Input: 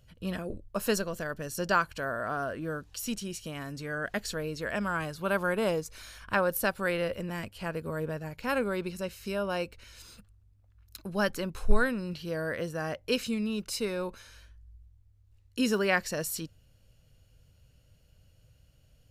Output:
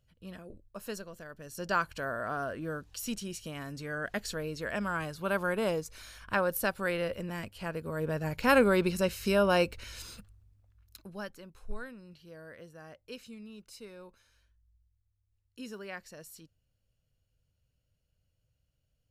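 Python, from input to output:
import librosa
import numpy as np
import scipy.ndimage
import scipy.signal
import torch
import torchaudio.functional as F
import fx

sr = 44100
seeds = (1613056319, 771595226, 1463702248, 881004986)

y = fx.gain(x, sr, db=fx.line((1.33, -11.5), (1.84, -2.0), (7.91, -2.0), (8.33, 6.5), (9.94, 6.5), (10.98, -6.0), (11.35, -16.0)))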